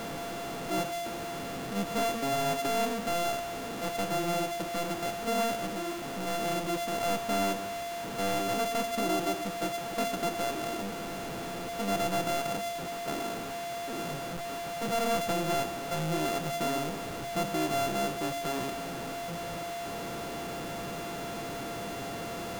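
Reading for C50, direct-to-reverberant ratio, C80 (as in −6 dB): 16.0 dB, 11.5 dB, 18.0 dB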